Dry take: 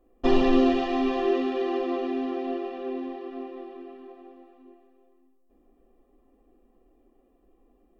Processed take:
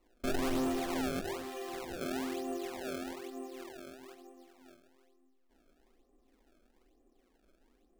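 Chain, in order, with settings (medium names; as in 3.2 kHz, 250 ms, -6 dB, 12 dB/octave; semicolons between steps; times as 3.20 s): 1.19–2.01 s: peaking EQ 230 Hz -12 dB 2.4 oct; decimation with a swept rate 26×, swing 160% 1.1 Hz; saturation -22 dBFS, distortion -8 dB; trim -6.5 dB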